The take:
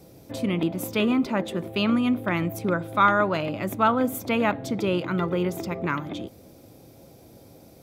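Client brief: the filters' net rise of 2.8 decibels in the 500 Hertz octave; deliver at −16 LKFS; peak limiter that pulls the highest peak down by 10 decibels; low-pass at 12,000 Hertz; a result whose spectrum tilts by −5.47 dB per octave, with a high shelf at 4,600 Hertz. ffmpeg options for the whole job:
ffmpeg -i in.wav -af "lowpass=12000,equalizer=frequency=500:width_type=o:gain=3.5,highshelf=frequency=4600:gain=6,volume=11dB,alimiter=limit=-5.5dB:level=0:latency=1" out.wav

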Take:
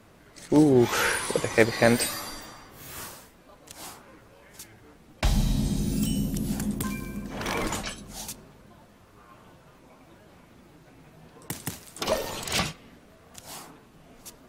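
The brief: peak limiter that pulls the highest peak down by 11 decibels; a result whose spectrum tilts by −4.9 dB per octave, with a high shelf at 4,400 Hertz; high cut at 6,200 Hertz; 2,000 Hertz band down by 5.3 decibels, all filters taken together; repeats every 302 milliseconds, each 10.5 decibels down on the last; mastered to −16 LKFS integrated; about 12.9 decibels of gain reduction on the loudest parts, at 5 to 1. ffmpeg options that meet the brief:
ffmpeg -i in.wav -af "lowpass=6200,equalizer=frequency=2000:width_type=o:gain=-6,highshelf=frequency=4400:gain=-3.5,acompressor=threshold=-29dB:ratio=5,alimiter=level_in=2dB:limit=-24dB:level=0:latency=1,volume=-2dB,aecho=1:1:302|604|906:0.299|0.0896|0.0269,volume=22dB" out.wav

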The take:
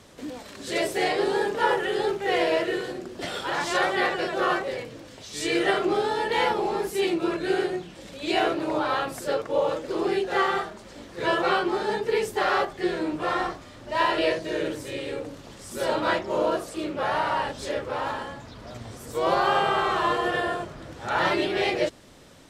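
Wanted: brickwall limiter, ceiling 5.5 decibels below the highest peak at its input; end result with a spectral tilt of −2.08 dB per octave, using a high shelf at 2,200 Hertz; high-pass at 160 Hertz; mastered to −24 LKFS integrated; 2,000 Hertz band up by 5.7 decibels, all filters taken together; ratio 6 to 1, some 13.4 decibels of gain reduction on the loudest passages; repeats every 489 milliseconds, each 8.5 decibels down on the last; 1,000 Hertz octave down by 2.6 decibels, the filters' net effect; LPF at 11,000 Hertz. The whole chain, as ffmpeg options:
ffmpeg -i in.wav -af "highpass=160,lowpass=11000,equalizer=frequency=1000:width_type=o:gain=-6.5,equalizer=frequency=2000:width_type=o:gain=5,highshelf=frequency=2200:gain=8,acompressor=threshold=-32dB:ratio=6,alimiter=level_in=1.5dB:limit=-24dB:level=0:latency=1,volume=-1.5dB,aecho=1:1:489|978|1467|1956:0.376|0.143|0.0543|0.0206,volume=11dB" out.wav

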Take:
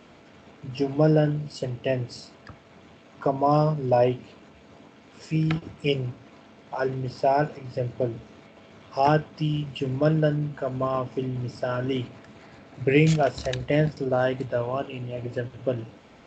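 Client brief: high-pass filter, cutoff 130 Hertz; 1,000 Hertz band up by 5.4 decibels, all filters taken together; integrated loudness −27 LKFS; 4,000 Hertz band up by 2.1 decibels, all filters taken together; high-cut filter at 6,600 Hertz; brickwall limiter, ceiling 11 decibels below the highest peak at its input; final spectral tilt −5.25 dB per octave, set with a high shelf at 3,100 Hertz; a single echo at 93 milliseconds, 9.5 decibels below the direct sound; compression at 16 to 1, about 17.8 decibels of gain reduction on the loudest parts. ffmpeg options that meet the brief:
ffmpeg -i in.wav -af "highpass=130,lowpass=6600,equalizer=frequency=1000:width_type=o:gain=8,highshelf=frequency=3100:gain=-5.5,equalizer=frequency=4000:width_type=o:gain=7.5,acompressor=threshold=-30dB:ratio=16,alimiter=level_in=5dB:limit=-24dB:level=0:latency=1,volume=-5dB,aecho=1:1:93:0.335,volume=13dB" out.wav

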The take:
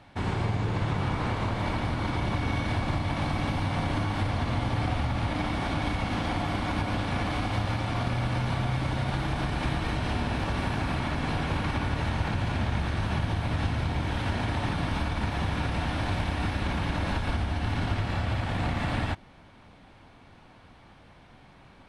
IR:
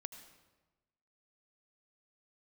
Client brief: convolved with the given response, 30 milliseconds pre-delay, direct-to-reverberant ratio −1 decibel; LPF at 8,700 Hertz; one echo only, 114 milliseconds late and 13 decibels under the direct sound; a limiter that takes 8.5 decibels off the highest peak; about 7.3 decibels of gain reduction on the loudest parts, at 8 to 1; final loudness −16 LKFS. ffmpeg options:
-filter_complex "[0:a]lowpass=8700,acompressor=threshold=-31dB:ratio=8,alimiter=level_in=7dB:limit=-24dB:level=0:latency=1,volume=-7dB,aecho=1:1:114:0.224,asplit=2[link_01][link_02];[1:a]atrim=start_sample=2205,adelay=30[link_03];[link_02][link_03]afir=irnorm=-1:irlink=0,volume=4.5dB[link_04];[link_01][link_04]amix=inputs=2:normalize=0,volume=20dB"

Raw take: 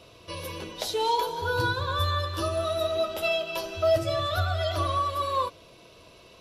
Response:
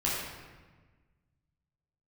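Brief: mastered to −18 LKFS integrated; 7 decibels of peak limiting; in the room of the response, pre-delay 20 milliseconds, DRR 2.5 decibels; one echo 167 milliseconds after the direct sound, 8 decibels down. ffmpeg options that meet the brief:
-filter_complex "[0:a]alimiter=limit=-21dB:level=0:latency=1,aecho=1:1:167:0.398,asplit=2[link_01][link_02];[1:a]atrim=start_sample=2205,adelay=20[link_03];[link_02][link_03]afir=irnorm=-1:irlink=0,volume=-11.5dB[link_04];[link_01][link_04]amix=inputs=2:normalize=0,volume=9dB"

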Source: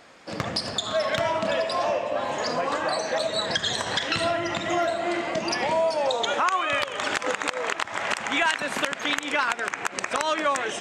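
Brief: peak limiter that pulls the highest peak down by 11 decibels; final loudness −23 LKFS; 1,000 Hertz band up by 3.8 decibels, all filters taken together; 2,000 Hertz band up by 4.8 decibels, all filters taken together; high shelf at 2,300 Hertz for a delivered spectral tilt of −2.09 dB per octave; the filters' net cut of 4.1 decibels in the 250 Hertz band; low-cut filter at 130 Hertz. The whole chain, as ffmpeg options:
ffmpeg -i in.wav -af "highpass=130,equalizer=frequency=250:width_type=o:gain=-6,equalizer=frequency=1000:width_type=o:gain=4,equalizer=frequency=2000:width_type=o:gain=6.5,highshelf=frequency=2300:gain=-3.5,volume=2.5dB,alimiter=limit=-13.5dB:level=0:latency=1" out.wav

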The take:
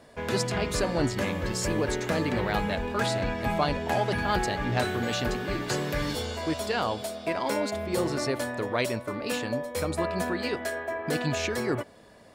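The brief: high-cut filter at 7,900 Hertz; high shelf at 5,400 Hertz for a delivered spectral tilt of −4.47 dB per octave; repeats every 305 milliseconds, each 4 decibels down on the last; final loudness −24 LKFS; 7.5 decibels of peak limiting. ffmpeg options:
ffmpeg -i in.wav -af "lowpass=7900,highshelf=frequency=5400:gain=-5,alimiter=limit=-19dB:level=0:latency=1,aecho=1:1:305|610|915|1220|1525|1830|2135|2440|2745:0.631|0.398|0.25|0.158|0.0994|0.0626|0.0394|0.0249|0.0157,volume=4dB" out.wav

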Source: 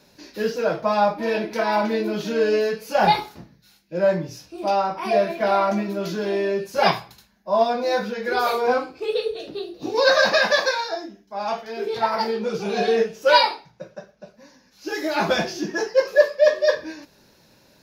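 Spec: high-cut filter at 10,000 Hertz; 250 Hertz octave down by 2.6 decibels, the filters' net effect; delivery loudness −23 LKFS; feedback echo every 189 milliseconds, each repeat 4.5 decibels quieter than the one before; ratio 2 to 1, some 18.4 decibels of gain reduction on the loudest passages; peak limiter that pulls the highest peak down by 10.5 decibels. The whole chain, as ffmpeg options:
ffmpeg -i in.wav -af "lowpass=10000,equalizer=frequency=250:width_type=o:gain=-3.5,acompressor=threshold=-46dB:ratio=2,alimiter=level_in=8.5dB:limit=-24dB:level=0:latency=1,volume=-8.5dB,aecho=1:1:189|378|567|756|945|1134|1323|1512|1701:0.596|0.357|0.214|0.129|0.0772|0.0463|0.0278|0.0167|0.01,volume=17dB" out.wav

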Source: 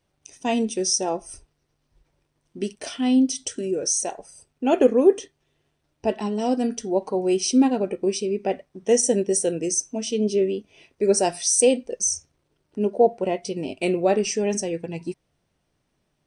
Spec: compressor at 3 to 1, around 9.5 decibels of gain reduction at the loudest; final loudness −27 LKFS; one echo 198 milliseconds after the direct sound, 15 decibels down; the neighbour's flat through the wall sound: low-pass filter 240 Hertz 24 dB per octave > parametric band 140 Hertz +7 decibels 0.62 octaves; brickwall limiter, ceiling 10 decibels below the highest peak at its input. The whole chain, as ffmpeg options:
ffmpeg -i in.wav -af "acompressor=threshold=-24dB:ratio=3,alimiter=limit=-22.5dB:level=0:latency=1,lowpass=frequency=240:width=0.5412,lowpass=frequency=240:width=1.3066,equalizer=frequency=140:width_type=o:width=0.62:gain=7,aecho=1:1:198:0.178,volume=11dB" out.wav

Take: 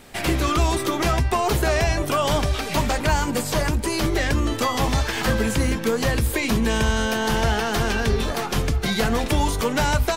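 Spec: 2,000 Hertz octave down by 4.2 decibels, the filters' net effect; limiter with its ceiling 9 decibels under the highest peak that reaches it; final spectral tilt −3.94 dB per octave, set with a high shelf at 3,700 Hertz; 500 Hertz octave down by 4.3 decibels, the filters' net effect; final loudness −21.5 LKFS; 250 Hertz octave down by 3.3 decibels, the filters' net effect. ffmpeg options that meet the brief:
ffmpeg -i in.wav -af "equalizer=frequency=250:width_type=o:gain=-3,equalizer=frequency=500:width_type=o:gain=-4.5,equalizer=frequency=2000:width_type=o:gain=-7,highshelf=frequency=3700:gain=6.5,volume=6.5dB,alimiter=limit=-12.5dB:level=0:latency=1" out.wav

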